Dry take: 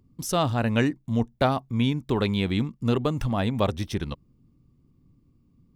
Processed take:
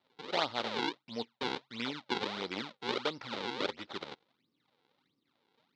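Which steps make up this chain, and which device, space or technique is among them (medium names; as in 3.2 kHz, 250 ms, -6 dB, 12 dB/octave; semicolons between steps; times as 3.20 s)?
circuit-bent sampling toy (decimation with a swept rate 41×, swing 160% 1.5 Hz; cabinet simulation 580–4300 Hz, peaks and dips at 680 Hz -6 dB, 1.1 kHz -6 dB, 1.7 kHz -7 dB, 2.6 kHz -4 dB, 3.8 kHz +6 dB); trim -1.5 dB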